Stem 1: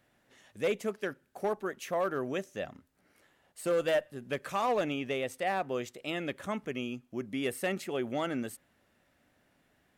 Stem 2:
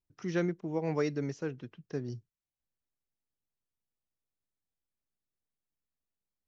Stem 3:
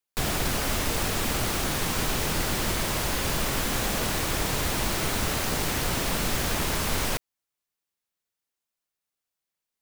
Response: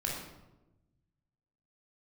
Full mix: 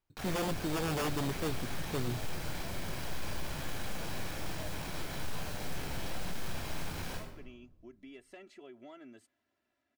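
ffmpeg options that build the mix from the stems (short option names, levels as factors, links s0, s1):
-filter_complex "[0:a]aecho=1:1:3:0.77,adelay=700,volume=0.2[s0];[1:a]acrusher=samples=11:mix=1:aa=0.000001,volume=1.41[s1];[2:a]aeval=exprs='(tanh(20*val(0)+0.55)-tanh(0.55))/20':c=same,alimiter=level_in=1.58:limit=0.0631:level=0:latency=1,volume=0.631,volume=0.596,asplit=2[s2][s3];[s3]volume=0.531[s4];[s0][s2]amix=inputs=2:normalize=0,highpass=100,lowpass=5900,acompressor=threshold=0.00355:ratio=4,volume=1[s5];[3:a]atrim=start_sample=2205[s6];[s4][s6]afir=irnorm=-1:irlink=0[s7];[s1][s5][s7]amix=inputs=3:normalize=0,aeval=exprs='0.0422*(abs(mod(val(0)/0.0422+3,4)-2)-1)':c=same"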